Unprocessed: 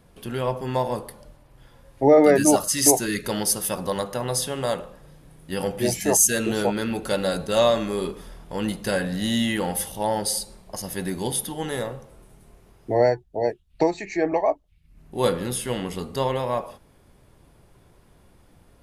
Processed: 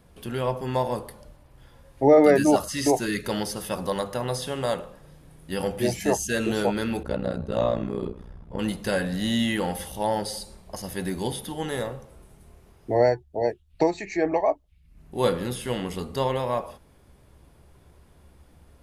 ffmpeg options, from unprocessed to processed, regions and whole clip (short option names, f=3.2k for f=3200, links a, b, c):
-filter_complex "[0:a]asettb=1/sr,asplit=3[a][b][c];[a]atrim=end=7.034[d];[b]atrim=start=7.03:end=8.59,asetpts=PTS-STARTPTS,afade=t=in:d=0.004:c=qsin,afade=t=out:st=1.556:d=0.004:c=qsin,lowpass=f=1.2k:p=1,equalizer=f=90:t=o:w=2.2:g=8.5,tremolo=f=61:d=0.947[e];[c]atrim=start=8.586[f];[d][e]acrossfade=d=0.004:c1=hsin:c2=qsin[g];[g][f]acrossfade=d=0.004:c1=qsin:c2=hsin,equalizer=f=71:w=6:g=13,acrossover=split=4400[h][i];[i]acompressor=threshold=-35dB:ratio=4:attack=1:release=60[j];[h][j]amix=inputs=2:normalize=0,bandreject=f=50:t=h:w=6,bandreject=f=100:t=h:w=6,volume=-1dB"